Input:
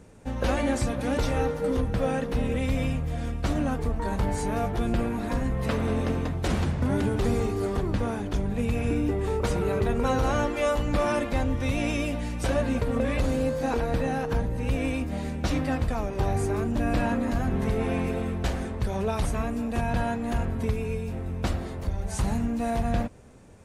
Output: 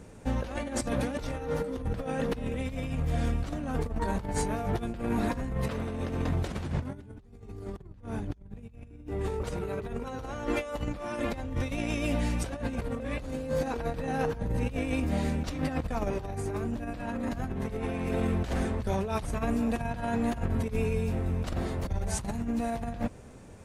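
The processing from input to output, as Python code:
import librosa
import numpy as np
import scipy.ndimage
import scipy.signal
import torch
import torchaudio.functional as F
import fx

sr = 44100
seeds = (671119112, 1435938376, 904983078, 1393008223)

y = fx.low_shelf(x, sr, hz=160.0, db=12.0, at=(6.94, 9.07))
y = fx.over_compress(y, sr, threshold_db=-29.0, ratio=-0.5)
y = y * librosa.db_to_amplitude(-2.0)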